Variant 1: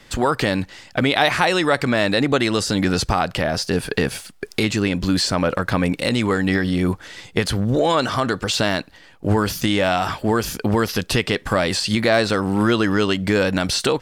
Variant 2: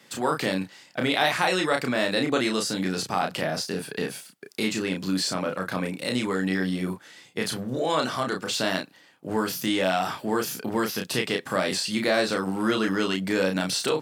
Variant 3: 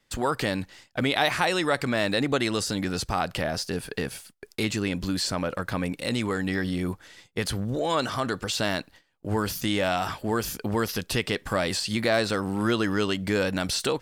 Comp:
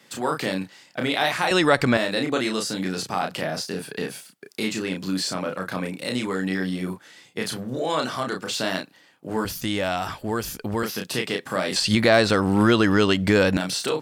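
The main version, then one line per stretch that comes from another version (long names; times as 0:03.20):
2
0:01.51–0:01.97: punch in from 1
0:09.45–0:10.83: punch in from 3
0:11.76–0:13.57: punch in from 1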